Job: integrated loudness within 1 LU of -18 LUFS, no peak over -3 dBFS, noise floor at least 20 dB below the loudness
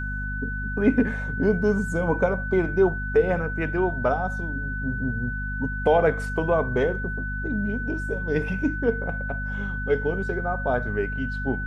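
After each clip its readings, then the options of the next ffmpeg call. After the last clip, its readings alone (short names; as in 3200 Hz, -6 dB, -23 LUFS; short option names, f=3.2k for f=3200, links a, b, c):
hum 50 Hz; harmonics up to 250 Hz; hum level -28 dBFS; steady tone 1500 Hz; tone level -31 dBFS; loudness -25.0 LUFS; peak -7.5 dBFS; loudness target -18.0 LUFS
-> -af "bandreject=f=50:t=h:w=4,bandreject=f=100:t=h:w=4,bandreject=f=150:t=h:w=4,bandreject=f=200:t=h:w=4,bandreject=f=250:t=h:w=4"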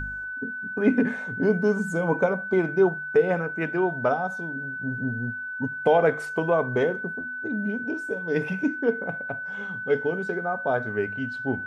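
hum none; steady tone 1500 Hz; tone level -31 dBFS
-> -af "bandreject=f=1.5k:w=30"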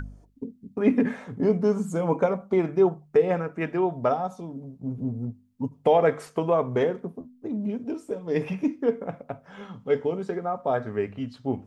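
steady tone none; loudness -26.5 LUFS; peak -8.0 dBFS; loudness target -18.0 LUFS
-> -af "volume=8.5dB,alimiter=limit=-3dB:level=0:latency=1"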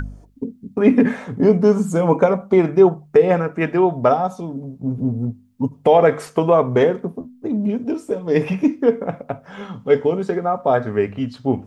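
loudness -18.0 LUFS; peak -3.0 dBFS; noise floor -49 dBFS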